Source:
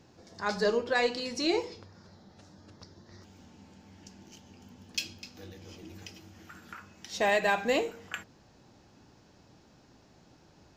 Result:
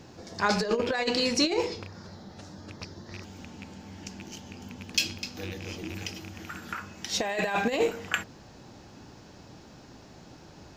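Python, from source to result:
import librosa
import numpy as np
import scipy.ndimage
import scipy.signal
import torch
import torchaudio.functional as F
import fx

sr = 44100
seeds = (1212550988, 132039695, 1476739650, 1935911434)

y = fx.rattle_buzz(x, sr, strikes_db=-48.0, level_db=-39.0)
y = fx.over_compress(y, sr, threshold_db=-30.0, ratio=-0.5)
y = y * 10.0 ** (6.0 / 20.0)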